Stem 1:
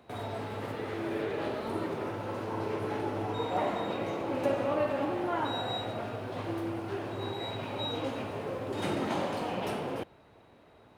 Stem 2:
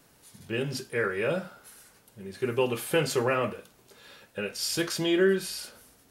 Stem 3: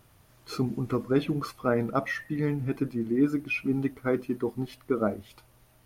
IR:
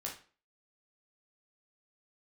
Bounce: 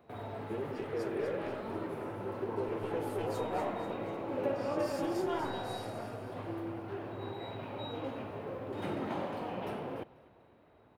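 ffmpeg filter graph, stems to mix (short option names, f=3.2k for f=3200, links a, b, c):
-filter_complex "[0:a]equalizer=f=7.1k:w=0.59:g=-12,volume=-4.5dB,asplit=2[a][b];[b]volume=-21.5dB[c];[1:a]aeval=exprs='clip(val(0),-1,0.0282)':c=same,volume=1dB,asplit=2[d][e];[e]volume=-20dB[f];[d]bandpass=f=430:t=q:w=1.9:csg=0,acompressor=threshold=-35dB:ratio=6,volume=0dB[g];[c][f]amix=inputs=2:normalize=0,aecho=0:1:244|488|732|976|1220|1464:1|0.45|0.202|0.0911|0.041|0.0185[h];[a][g][h]amix=inputs=3:normalize=0"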